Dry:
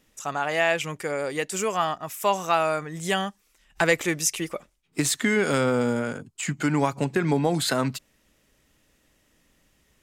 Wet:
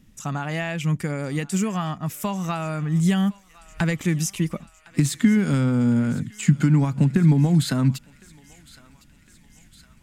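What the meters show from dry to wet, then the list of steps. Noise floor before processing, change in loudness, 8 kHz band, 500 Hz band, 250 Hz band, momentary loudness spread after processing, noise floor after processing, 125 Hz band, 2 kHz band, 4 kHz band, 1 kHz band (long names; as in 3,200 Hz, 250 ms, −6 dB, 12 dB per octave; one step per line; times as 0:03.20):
−66 dBFS, +3.0 dB, −3.5 dB, −7.0 dB, +7.5 dB, 9 LU, −54 dBFS, +11.5 dB, −5.5 dB, −4.0 dB, −6.5 dB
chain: downward compressor 2.5 to 1, threshold −27 dBFS, peak gain reduction 8.5 dB
low shelf with overshoot 300 Hz +13.5 dB, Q 1.5
on a send: feedback echo with a high-pass in the loop 1,059 ms, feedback 73%, high-pass 1,200 Hz, level −19 dB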